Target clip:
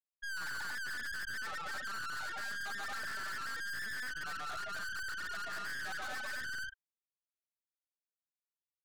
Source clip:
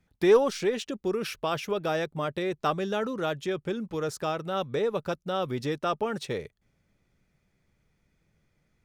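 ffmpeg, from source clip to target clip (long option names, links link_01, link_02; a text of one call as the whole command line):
ffmpeg -i in.wav -filter_complex "[0:a]afftfilt=real='real(if(between(b,1,1012),(2*floor((b-1)/92)+1)*92-b,b),0)':imag='imag(if(between(b,1,1012),(2*floor((b-1)/92)+1)*92-b,b),0)*if(between(b,1,1012),-1,1)':win_size=2048:overlap=0.75,afwtdn=0.0112,acrossover=split=2500[link_01][link_02];[link_02]acompressor=threshold=-49dB:ratio=4:attack=1:release=60[link_03];[link_01][link_03]amix=inputs=2:normalize=0,highpass=360,areverse,acompressor=threshold=-37dB:ratio=12,areverse,afftfilt=real='re*gte(hypot(re,im),0.0562)':imag='im*gte(hypot(re,im),0.0562)':win_size=1024:overlap=0.75,aecho=1:1:134.1|227.4|271.1:0.891|0.891|0.282,aeval=exprs='(tanh(355*val(0)+0.75)-tanh(0.75))/355':channel_layout=same,volume=11dB" out.wav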